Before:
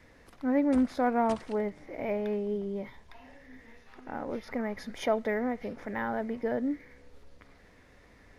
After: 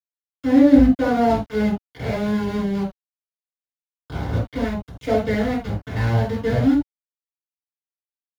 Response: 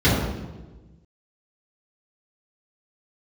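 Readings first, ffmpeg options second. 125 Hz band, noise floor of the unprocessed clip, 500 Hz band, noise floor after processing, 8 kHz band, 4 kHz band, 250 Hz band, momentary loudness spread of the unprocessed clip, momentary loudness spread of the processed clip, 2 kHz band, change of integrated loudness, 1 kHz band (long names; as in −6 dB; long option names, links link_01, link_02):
+22.5 dB, −58 dBFS, +7.5 dB, below −85 dBFS, can't be measured, +11.0 dB, +12.5 dB, 12 LU, 14 LU, +8.0 dB, +11.0 dB, +6.5 dB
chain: -filter_complex "[0:a]aeval=exprs='val(0)*gte(abs(val(0)),0.0282)':channel_layout=same,asubboost=boost=2.5:cutoff=150[link_01];[1:a]atrim=start_sample=2205,atrim=end_sample=3969[link_02];[link_01][link_02]afir=irnorm=-1:irlink=0,volume=-13dB"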